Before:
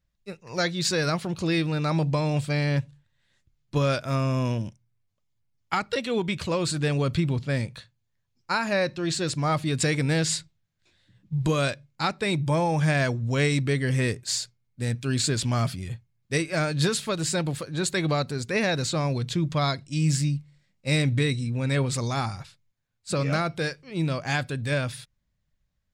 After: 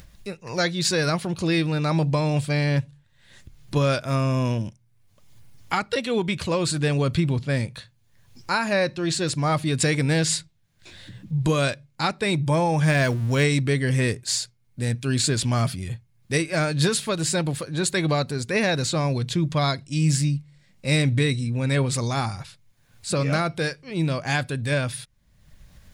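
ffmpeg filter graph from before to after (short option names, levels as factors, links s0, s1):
-filter_complex "[0:a]asettb=1/sr,asplit=3[s0][s1][s2];[s0]atrim=end=12.864[s3];[s1]atrim=start=12.86:end=13.44,asetpts=PTS-STARTPTS,afade=t=in:d=0.004:c=qsin,afade=t=out:st=0.576:d=0.004:c=qsin,aeval=exprs='val(0)+0.5*0.015*sgn(val(0))':c=same,bandreject=f=740:w=21[s4];[s2]atrim=start=13.436[s5];[s3][s4]acrossfade=d=0.004:c1=hsin:c2=qsin[s6];[s6][s5]acrossfade=d=0.004:c1=qsin:c2=hsin,equalizer=f=9700:w=6.7:g=6.5,bandreject=f=1300:w=28,acompressor=mode=upward:threshold=0.0316:ratio=2.5,volume=1.33"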